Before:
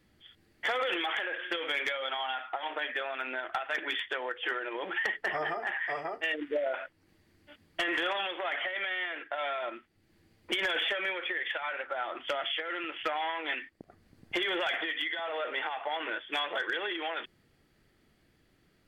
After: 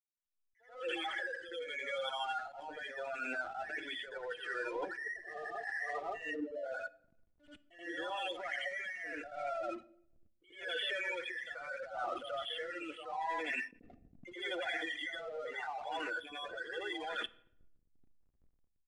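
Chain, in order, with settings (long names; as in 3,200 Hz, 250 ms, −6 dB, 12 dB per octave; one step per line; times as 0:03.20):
fade in at the beginning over 1.75 s
gate on every frequency bin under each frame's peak −10 dB strong
comb filter 4.1 ms, depth 39%
reversed playback
downward compressor 16 to 1, threshold −43 dBFS, peak gain reduction 16.5 dB
reversed playback
slack as between gear wheels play −55.5 dBFS
rotating-speaker cabinet horn 0.8 Hz
backwards echo 82 ms −8 dB
on a send at −17 dB: convolution reverb RT60 0.70 s, pre-delay 4 ms
on the sum: downsampling to 22,050 Hz
level that may rise only so fast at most 130 dB per second
level +9 dB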